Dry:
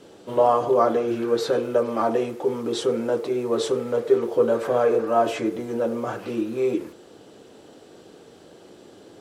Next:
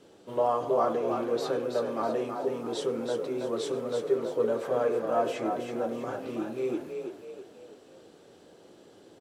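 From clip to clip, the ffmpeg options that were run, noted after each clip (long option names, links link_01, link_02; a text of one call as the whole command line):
ffmpeg -i in.wav -filter_complex "[0:a]asplit=6[link_01][link_02][link_03][link_04][link_05][link_06];[link_02]adelay=325,afreqshift=34,volume=-6dB[link_07];[link_03]adelay=650,afreqshift=68,volume=-13.3dB[link_08];[link_04]adelay=975,afreqshift=102,volume=-20.7dB[link_09];[link_05]adelay=1300,afreqshift=136,volume=-28dB[link_10];[link_06]adelay=1625,afreqshift=170,volume=-35.3dB[link_11];[link_01][link_07][link_08][link_09][link_10][link_11]amix=inputs=6:normalize=0,volume=-8dB" out.wav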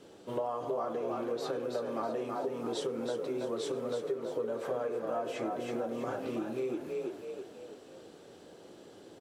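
ffmpeg -i in.wav -af "acompressor=threshold=-33dB:ratio=6,volume=1.5dB" out.wav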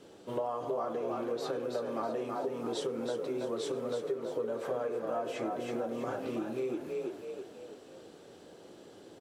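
ffmpeg -i in.wav -af anull out.wav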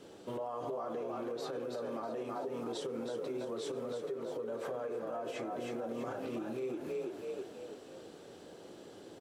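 ffmpeg -i in.wav -af "alimiter=level_in=8dB:limit=-24dB:level=0:latency=1:release=115,volume=-8dB,volume=1dB" out.wav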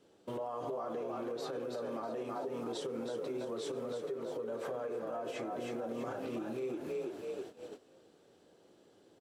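ffmpeg -i in.wav -af "agate=range=-12dB:threshold=-46dB:ratio=16:detection=peak" out.wav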